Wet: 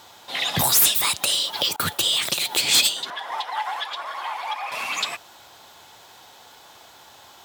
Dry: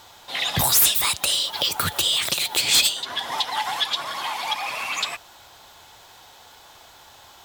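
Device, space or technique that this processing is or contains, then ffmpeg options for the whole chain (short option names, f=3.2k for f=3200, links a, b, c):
filter by subtraction: -filter_complex "[0:a]asettb=1/sr,asplit=3[a][b][c];[a]atrim=end=1.764[d];[b]atrim=start=1.76:end=2.48,asetpts=PTS-STARTPTS,afade=t=in:d=0.004:c=qsin,afade=t=out:st=0.716:d=0.004:c=qsin,agate=range=-33dB:threshold=-23dB:ratio=3:detection=peak[e];[c]atrim=start=2.476[f];[d][e]acrossfade=d=0.004:c1=hsin:c2=qsin[g];[g][f]acrossfade=d=0.004:c1=qsin:c2=hsin,asplit=2[h][i];[i]lowpass=210,volume=-1[j];[h][j]amix=inputs=2:normalize=0,asettb=1/sr,asplit=3[k][l][m];[k]atrim=end=3.104[n];[l]atrim=start=3.1:end=4.72,asetpts=PTS-STARTPTS,afade=t=in:d=0.004:c=qsin,afade=t=out:st=1.616:d=0.004:c=qsin,acrossover=split=470 2300:gain=0.0891 1 0.251[o][p][q];[o][p][q]amix=inputs=3:normalize=0[r];[m]atrim=start=4.716[s];[n][r]acrossfade=d=0.004:c1=hsin:c2=qsin[t];[t][s]acrossfade=d=0.004:c1=qsin:c2=hsin"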